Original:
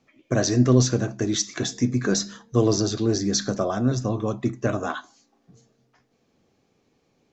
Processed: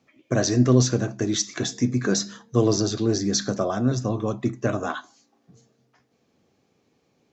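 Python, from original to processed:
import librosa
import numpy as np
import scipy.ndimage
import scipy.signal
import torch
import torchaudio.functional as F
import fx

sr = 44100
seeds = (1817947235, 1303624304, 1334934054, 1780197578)

y = scipy.signal.sosfilt(scipy.signal.butter(2, 61.0, 'highpass', fs=sr, output='sos'), x)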